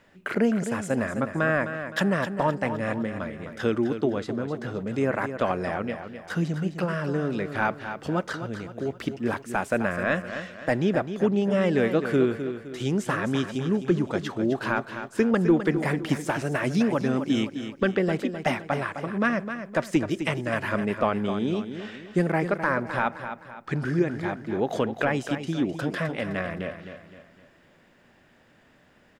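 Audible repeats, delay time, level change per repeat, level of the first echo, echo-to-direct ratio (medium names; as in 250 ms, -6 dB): 4, 258 ms, -7.5 dB, -9.5 dB, -8.5 dB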